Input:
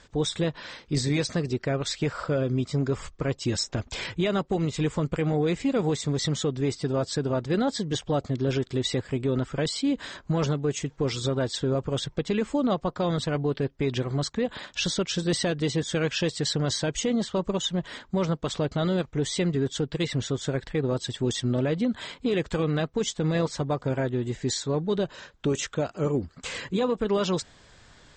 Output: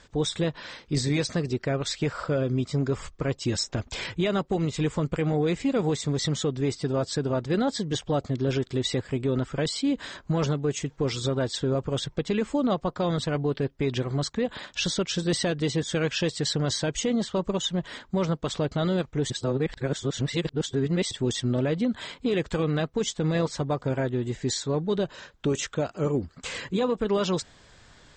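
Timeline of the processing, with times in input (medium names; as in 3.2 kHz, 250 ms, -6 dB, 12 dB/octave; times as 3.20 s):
19.30–21.11 s: reverse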